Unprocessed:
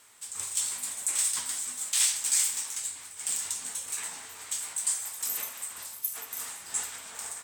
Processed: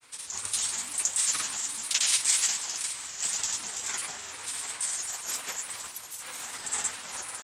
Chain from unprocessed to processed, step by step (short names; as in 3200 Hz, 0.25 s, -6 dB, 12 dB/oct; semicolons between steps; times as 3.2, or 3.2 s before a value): diffused feedback echo 0.472 s, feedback 47%, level -13 dB; grains, pitch spread up and down by 3 st; LPF 7800 Hz 12 dB/oct; gain +6 dB